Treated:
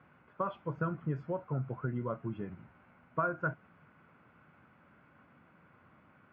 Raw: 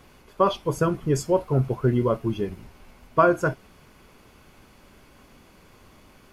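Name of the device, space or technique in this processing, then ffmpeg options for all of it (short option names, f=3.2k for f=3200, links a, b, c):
bass amplifier: -af "acompressor=threshold=-23dB:ratio=3,highpass=f=87:w=0.5412,highpass=f=87:w=1.3066,equalizer=f=160:t=q:w=4:g=5,equalizer=f=400:t=q:w=4:g=-7,equalizer=f=1.4k:t=q:w=4:g=8,lowpass=f=2.3k:w=0.5412,lowpass=f=2.3k:w=1.3066,volume=-9dB"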